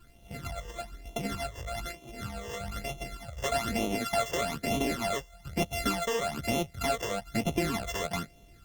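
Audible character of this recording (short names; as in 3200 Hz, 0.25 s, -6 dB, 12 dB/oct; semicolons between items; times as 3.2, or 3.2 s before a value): a buzz of ramps at a fixed pitch in blocks of 64 samples; phasing stages 12, 1.1 Hz, lowest notch 230–1600 Hz; a quantiser's noise floor 12-bit, dither none; Opus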